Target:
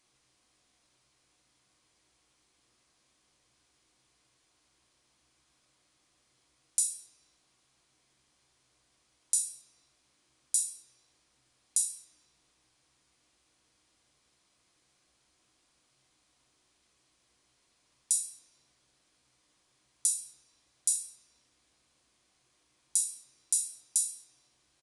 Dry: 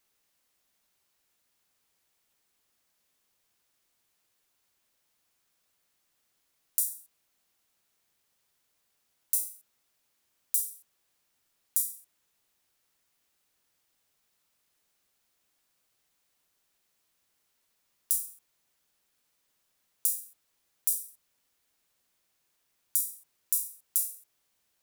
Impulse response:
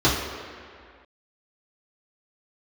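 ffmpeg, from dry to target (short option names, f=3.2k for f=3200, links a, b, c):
-filter_complex "[0:a]aresample=22050,aresample=44100,asplit=2[a][b];[1:a]atrim=start_sample=2205[c];[b][c]afir=irnorm=-1:irlink=0,volume=-21dB[d];[a][d]amix=inputs=2:normalize=0,volume=4.5dB"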